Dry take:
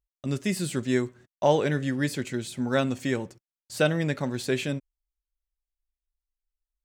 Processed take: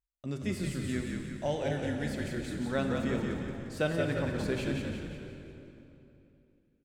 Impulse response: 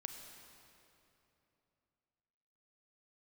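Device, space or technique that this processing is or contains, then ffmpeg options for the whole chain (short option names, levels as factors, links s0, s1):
swimming-pool hall: -filter_complex "[0:a]asettb=1/sr,asplit=3[s0][s1][s2];[s0]atrim=end=0.724[s3];[s1]atrim=start=0.72:end=2.08,asetpts=PTS-STARTPTS,afade=t=in:d=0.004:c=qsin,afade=t=out:st=1.356:d=0.004:c=qsin,equalizer=f=100:t=o:w=0.67:g=-11,equalizer=f=400:t=o:w=0.67:g=-7,equalizer=f=1000:t=o:w=0.67:g=-10,equalizer=f=10000:t=o:w=0.67:g=8[s4];[s2]atrim=start=2.076[s5];[s3][s4]acrossfade=d=0.004:c1=hsin:c2=qsin[s6];[s6][s5]acrossfade=d=0.004:c1=qsin:c2=hsin[s7];[1:a]atrim=start_sample=2205[s8];[s7][s8]afir=irnorm=-1:irlink=0,highshelf=f=3800:g=-6.5,asplit=7[s9][s10][s11][s12][s13][s14][s15];[s10]adelay=176,afreqshift=-48,volume=0.631[s16];[s11]adelay=352,afreqshift=-96,volume=0.309[s17];[s12]adelay=528,afreqshift=-144,volume=0.151[s18];[s13]adelay=704,afreqshift=-192,volume=0.0741[s19];[s14]adelay=880,afreqshift=-240,volume=0.0363[s20];[s15]adelay=1056,afreqshift=-288,volume=0.0178[s21];[s9][s16][s17][s18][s19][s20][s21]amix=inputs=7:normalize=0,volume=0.708"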